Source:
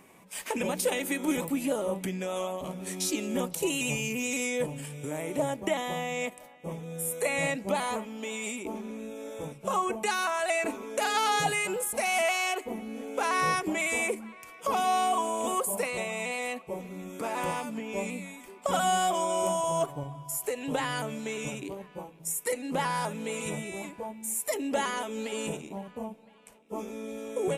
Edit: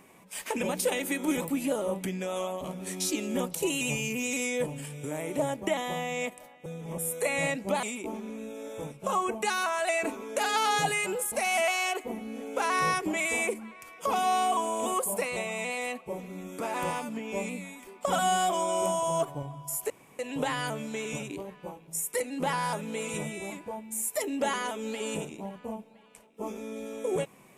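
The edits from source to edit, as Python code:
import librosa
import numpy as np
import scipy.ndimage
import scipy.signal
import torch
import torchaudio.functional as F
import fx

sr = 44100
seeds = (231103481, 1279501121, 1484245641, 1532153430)

y = fx.edit(x, sr, fx.reverse_span(start_s=6.66, length_s=0.32),
    fx.cut(start_s=7.83, length_s=0.61),
    fx.insert_room_tone(at_s=20.51, length_s=0.29), tone=tone)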